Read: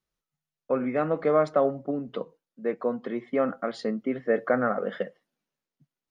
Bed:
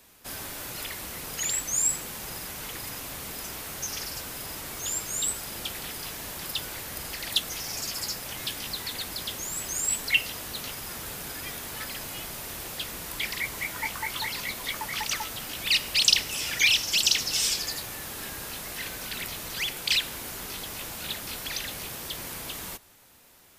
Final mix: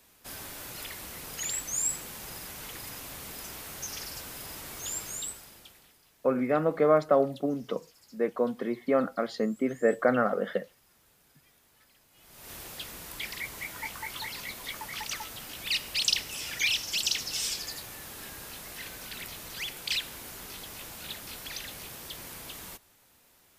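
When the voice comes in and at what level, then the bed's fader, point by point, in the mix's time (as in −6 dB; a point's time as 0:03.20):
5.55 s, 0.0 dB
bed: 0:05.08 −4.5 dB
0:06.04 −27 dB
0:12.10 −27 dB
0:12.52 −6 dB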